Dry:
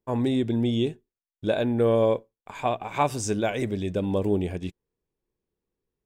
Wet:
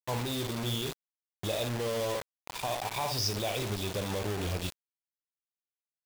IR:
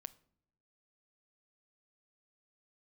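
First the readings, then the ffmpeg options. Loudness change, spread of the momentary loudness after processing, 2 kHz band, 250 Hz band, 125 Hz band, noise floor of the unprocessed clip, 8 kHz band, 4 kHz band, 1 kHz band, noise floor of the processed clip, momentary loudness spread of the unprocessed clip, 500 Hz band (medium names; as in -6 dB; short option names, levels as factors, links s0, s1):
-7.0 dB, 8 LU, -2.5 dB, -12.5 dB, -5.5 dB, under -85 dBFS, +1.0 dB, +4.5 dB, -6.5 dB, under -85 dBFS, 9 LU, -9.5 dB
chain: -af "aecho=1:1:39|57:0.188|0.335,acompressor=threshold=0.0794:ratio=6,alimiter=limit=0.0944:level=0:latency=1:release=102,firequalizer=gain_entry='entry(110,0);entry(170,-7);entry(240,-11);entry(510,-3);entry(1000,0);entry(1600,-23);entry(2400,0);entry(5100,13);entry(7900,-29)':delay=0.05:min_phase=1,acrusher=bits=5:mix=0:aa=0.000001"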